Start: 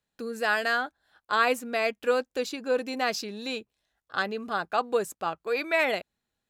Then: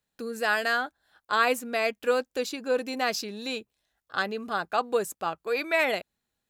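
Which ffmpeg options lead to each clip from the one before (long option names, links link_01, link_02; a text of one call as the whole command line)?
ffmpeg -i in.wav -af "highshelf=frequency=8400:gain=5.5" out.wav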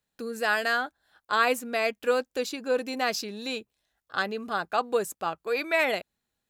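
ffmpeg -i in.wav -af anull out.wav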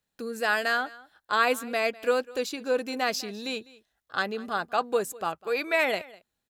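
ffmpeg -i in.wav -af "aecho=1:1:201:0.0891" out.wav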